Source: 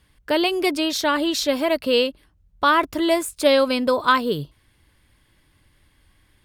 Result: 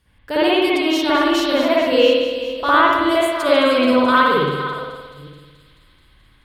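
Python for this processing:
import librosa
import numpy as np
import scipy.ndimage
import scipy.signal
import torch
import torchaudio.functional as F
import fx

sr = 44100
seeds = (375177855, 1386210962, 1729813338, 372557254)

y = fx.reverse_delay(x, sr, ms=435, wet_db=-12.5)
y = fx.echo_wet_highpass(y, sr, ms=215, feedback_pct=76, hz=4400.0, wet_db=-13.0)
y = fx.rev_spring(y, sr, rt60_s=1.3, pass_ms=(56,), chirp_ms=50, drr_db=-9.5)
y = y * librosa.db_to_amplitude(-5.0)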